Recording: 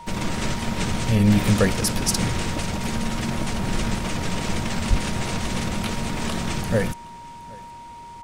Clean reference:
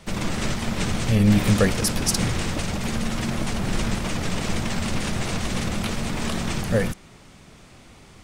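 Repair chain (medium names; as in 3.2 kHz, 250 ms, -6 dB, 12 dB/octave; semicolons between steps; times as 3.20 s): band-stop 940 Hz, Q 30; 4.89–5.01 s: high-pass 140 Hz 24 dB/octave; inverse comb 768 ms -23.5 dB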